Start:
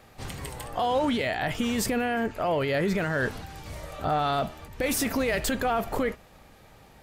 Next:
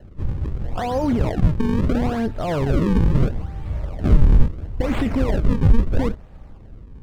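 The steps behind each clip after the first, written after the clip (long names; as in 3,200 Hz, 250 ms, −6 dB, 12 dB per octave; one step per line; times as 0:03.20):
sample-and-hold swept by an LFO 37×, swing 160% 0.75 Hz
RIAA equalisation playback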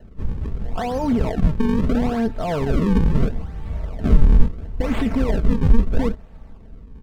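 comb filter 4.5 ms, depth 42%
level −1 dB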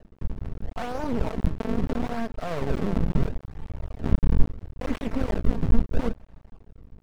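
half-wave rectification
level −3.5 dB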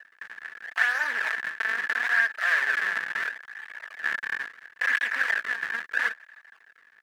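high-pass with resonance 1,700 Hz, resonance Q 15
level +5.5 dB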